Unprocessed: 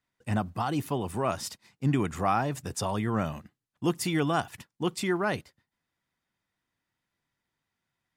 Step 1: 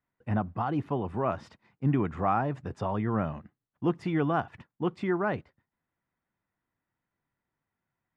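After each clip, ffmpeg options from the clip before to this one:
-af "lowpass=1.7k"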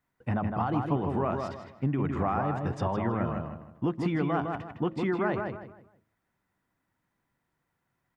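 -filter_complex "[0:a]bandreject=f=107.2:t=h:w=4,bandreject=f=214.4:t=h:w=4,bandreject=f=321.6:t=h:w=4,bandreject=f=428.8:t=h:w=4,bandreject=f=536:t=h:w=4,bandreject=f=643.2:t=h:w=4,acompressor=threshold=-31dB:ratio=6,asplit=2[a][b];[b]adelay=158,lowpass=f=2.8k:p=1,volume=-4dB,asplit=2[c][d];[d]adelay=158,lowpass=f=2.8k:p=1,volume=0.32,asplit=2[e][f];[f]adelay=158,lowpass=f=2.8k:p=1,volume=0.32,asplit=2[g][h];[h]adelay=158,lowpass=f=2.8k:p=1,volume=0.32[i];[c][e][g][i]amix=inputs=4:normalize=0[j];[a][j]amix=inputs=2:normalize=0,volume=5.5dB"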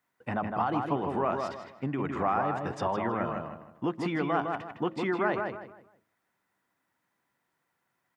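-af "highpass=f=420:p=1,volume=3dB"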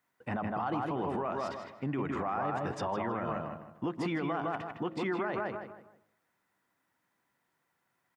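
-filter_complex "[0:a]asplit=2[a][b];[b]adelay=139,lowpass=f=2k:p=1,volume=-19dB,asplit=2[c][d];[d]adelay=139,lowpass=f=2k:p=1,volume=0.4,asplit=2[e][f];[f]adelay=139,lowpass=f=2k:p=1,volume=0.4[g];[a][c][e][g]amix=inputs=4:normalize=0,alimiter=limit=-24dB:level=0:latency=1:release=54"

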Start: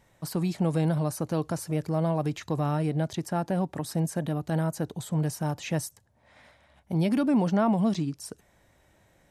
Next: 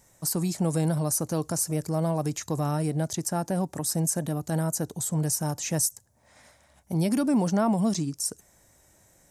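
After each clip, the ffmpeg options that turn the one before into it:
-af "highshelf=f=4.7k:t=q:w=1.5:g=11"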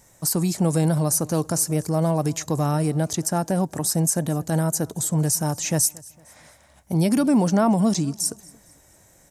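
-af "aecho=1:1:228|456|684:0.0668|0.0281|0.0118,volume=5dB"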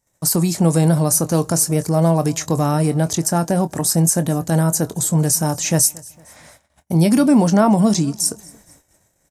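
-filter_complex "[0:a]agate=range=-25dB:threshold=-52dB:ratio=16:detection=peak,asplit=2[a][b];[b]adelay=24,volume=-12.5dB[c];[a][c]amix=inputs=2:normalize=0,volume=5dB"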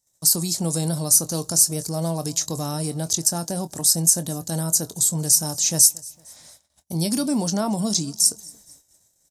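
-af "highshelf=f=3.1k:t=q:w=1.5:g=10.5,volume=-10dB"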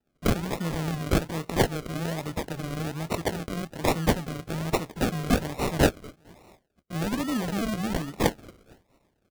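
-af "acrusher=samples=39:mix=1:aa=0.000001:lfo=1:lforange=23.4:lforate=1.2,volume=-5.5dB"

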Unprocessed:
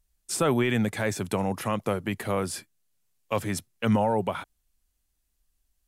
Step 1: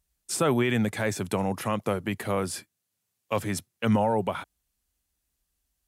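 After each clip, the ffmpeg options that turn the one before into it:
-af "highpass=53"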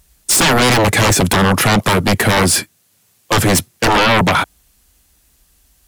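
-af "aeval=exprs='0.251*sin(PI/2*6.31*val(0)/0.251)':c=same,volume=3.5dB"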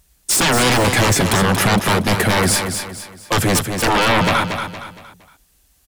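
-af "aecho=1:1:232|464|696|928:0.447|0.17|0.0645|0.0245,volume=-3.5dB"

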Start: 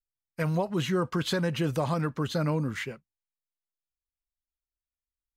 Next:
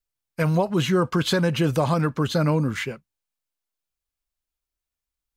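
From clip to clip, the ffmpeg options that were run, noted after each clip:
-af "bandreject=f=1.9k:w=21,volume=6.5dB"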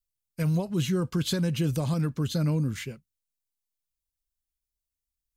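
-af "equalizer=f=1k:w=0.38:g=-15"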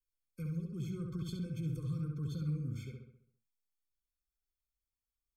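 -filter_complex "[0:a]acrossover=split=130[a][b];[b]acompressor=threshold=-50dB:ratio=2[c];[a][c]amix=inputs=2:normalize=0,asplit=2[d][e];[e]adelay=67,lowpass=f=3.6k:p=1,volume=-3dB,asplit=2[f][g];[g]adelay=67,lowpass=f=3.6k:p=1,volume=0.51,asplit=2[h][i];[i]adelay=67,lowpass=f=3.6k:p=1,volume=0.51,asplit=2[j][k];[k]adelay=67,lowpass=f=3.6k:p=1,volume=0.51,asplit=2[l][m];[m]adelay=67,lowpass=f=3.6k:p=1,volume=0.51,asplit=2[n][o];[o]adelay=67,lowpass=f=3.6k:p=1,volume=0.51,asplit=2[p][q];[q]adelay=67,lowpass=f=3.6k:p=1,volume=0.51[r];[f][h][j][l][n][p][r]amix=inputs=7:normalize=0[s];[d][s]amix=inputs=2:normalize=0,afftfilt=real='re*eq(mod(floor(b*sr/1024/520),2),0)':imag='im*eq(mod(floor(b*sr/1024/520),2),0)':win_size=1024:overlap=0.75,volume=-6dB"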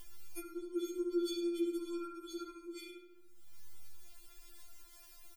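-af "aecho=1:1:104:0.266,acompressor=mode=upward:threshold=-44dB:ratio=2.5,afftfilt=real='re*4*eq(mod(b,16),0)':imag='im*4*eq(mod(b,16),0)':win_size=2048:overlap=0.75,volume=11.5dB"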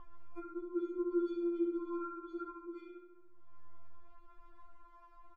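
-af "lowpass=f=1.1k:t=q:w=6.5"

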